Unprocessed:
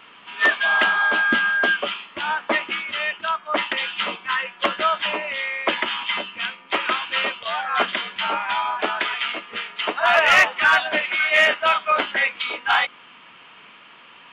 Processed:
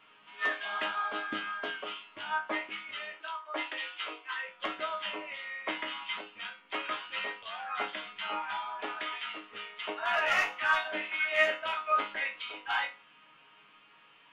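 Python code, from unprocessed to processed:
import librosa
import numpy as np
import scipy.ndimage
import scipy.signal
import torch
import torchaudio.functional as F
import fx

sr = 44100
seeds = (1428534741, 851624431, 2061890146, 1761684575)

y = fx.steep_highpass(x, sr, hz=290.0, slope=48, at=(3.16, 4.49))
y = fx.resonator_bank(y, sr, root=44, chord='sus4', decay_s=0.3)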